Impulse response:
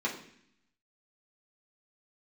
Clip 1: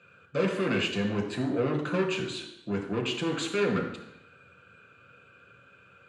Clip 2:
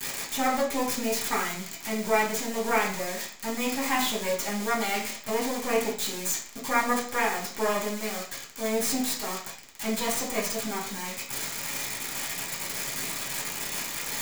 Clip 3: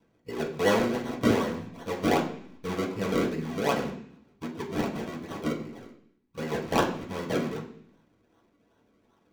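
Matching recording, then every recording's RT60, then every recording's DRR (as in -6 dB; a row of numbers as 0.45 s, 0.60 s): 3; 0.85 s, 0.45 s, 0.65 s; 0.5 dB, -8.0 dB, -5.0 dB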